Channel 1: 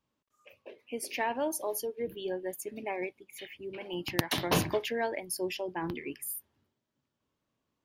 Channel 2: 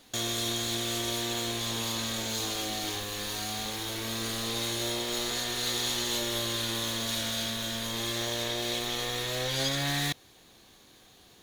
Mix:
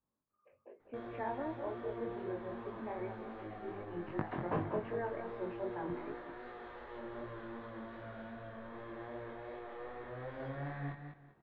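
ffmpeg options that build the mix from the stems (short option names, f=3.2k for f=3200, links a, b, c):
-filter_complex "[0:a]volume=-4dB,asplit=2[a][b];[b]volume=-9dB[c];[1:a]bandreject=f=60:t=h:w=6,bandreject=f=120:t=h:w=6,bandreject=f=180:t=h:w=6,bandreject=f=240:t=h:w=6,bandreject=f=300:t=h:w=6,bandreject=f=360:t=h:w=6,adelay=800,volume=-7dB,asplit=2[d][e];[e]volume=-8dB[f];[c][f]amix=inputs=2:normalize=0,aecho=0:1:196|392|588|784:1|0.27|0.0729|0.0197[g];[a][d][g]amix=inputs=3:normalize=0,lowpass=f=1.6k:w=0.5412,lowpass=f=1.6k:w=1.3066,flanger=delay=19:depth=4.2:speed=2.6"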